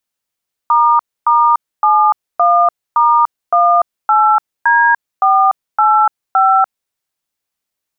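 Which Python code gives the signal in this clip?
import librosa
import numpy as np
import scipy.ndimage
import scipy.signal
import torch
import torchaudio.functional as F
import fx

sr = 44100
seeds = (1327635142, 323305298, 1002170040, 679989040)

y = fx.dtmf(sr, digits='**71*18D485', tone_ms=293, gap_ms=272, level_db=-10.0)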